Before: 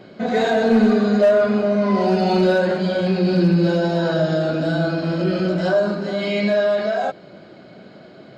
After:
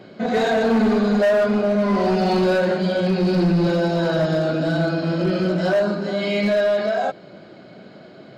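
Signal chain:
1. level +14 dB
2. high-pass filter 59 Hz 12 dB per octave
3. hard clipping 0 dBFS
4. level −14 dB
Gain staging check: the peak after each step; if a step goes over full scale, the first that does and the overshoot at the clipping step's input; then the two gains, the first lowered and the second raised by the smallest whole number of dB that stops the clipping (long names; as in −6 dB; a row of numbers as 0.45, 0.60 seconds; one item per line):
+5.5, +7.0, 0.0, −14.0 dBFS
step 1, 7.0 dB
step 1 +7 dB, step 4 −7 dB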